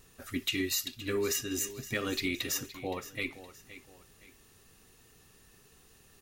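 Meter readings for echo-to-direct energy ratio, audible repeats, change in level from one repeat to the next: -14.5 dB, 2, -8.5 dB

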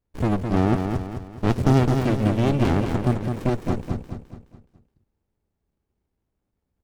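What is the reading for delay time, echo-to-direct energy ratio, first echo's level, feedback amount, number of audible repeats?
211 ms, -5.0 dB, -6.0 dB, 43%, 4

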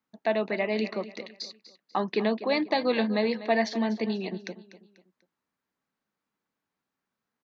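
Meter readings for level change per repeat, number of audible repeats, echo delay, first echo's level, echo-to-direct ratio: -8.5 dB, 3, 245 ms, -15.0 dB, -14.5 dB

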